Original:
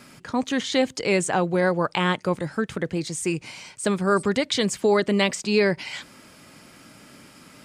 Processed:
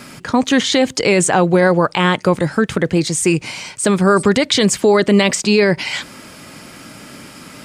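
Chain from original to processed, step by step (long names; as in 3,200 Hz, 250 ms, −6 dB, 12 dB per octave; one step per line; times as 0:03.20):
boost into a limiter +14.5 dB
level −3 dB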